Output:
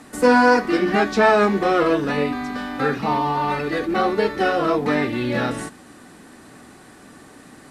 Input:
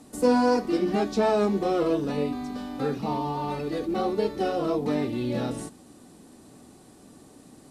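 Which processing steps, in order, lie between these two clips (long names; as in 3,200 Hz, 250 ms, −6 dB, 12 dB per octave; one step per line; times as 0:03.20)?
parametric band 1,700 Hz +14 dB 1.4 octaves
level +4 dB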